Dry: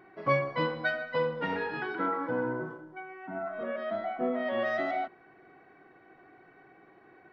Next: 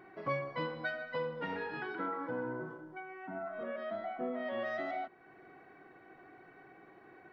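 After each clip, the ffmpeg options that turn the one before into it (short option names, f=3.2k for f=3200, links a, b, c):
-af "acompressor=threshold=-47dB:ratio=1.5"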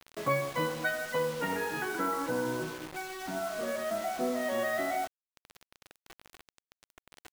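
-af "acrusher=bits=7:mix=0:aa=0.000001,volume=6dB"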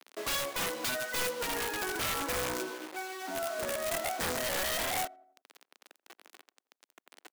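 -filter_complex "[0:a]highpass=f=270:w=0.5412,highpass=f=270:w=1.3066,asplit=2[a][b];[b]adelay=86,lowpass=f=1.3k:p=1,volume=-21dB,asplit=2[c][d];[d]adelay=86,lowpass=f=1.3k:p=1,volume=0.53,asplit=2[e][f];[f]adelay=86,lowpass=f=1.3k:p=1,volume=0.53,asplit=2[g][h];[h]adelay=86,lowpass=f=1.3k:p=1,volume=0.53[i];[a][c][e][g][i]amix=inputs=5:normalize=0,aeval=exprs='(mod(22.4*val(0)+1,2)-1)/22.4':c=same"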